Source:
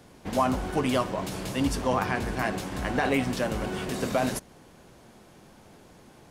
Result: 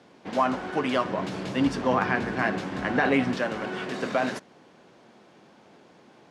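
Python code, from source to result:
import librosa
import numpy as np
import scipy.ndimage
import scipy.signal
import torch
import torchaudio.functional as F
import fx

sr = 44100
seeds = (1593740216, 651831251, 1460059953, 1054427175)

y = fx.dynamic_eq(x, sr, hz=1600.0, q=1.6, threshold_db=-44.0, ratio=4.0, max_db=5)
y = fx.bandpass_edges(y, sr, low_hz=200.0, high_hz=4700.0)
y = fx.low_shelf(y, sr, hz=260.0, db=9.0, at=(1.05, 3.38))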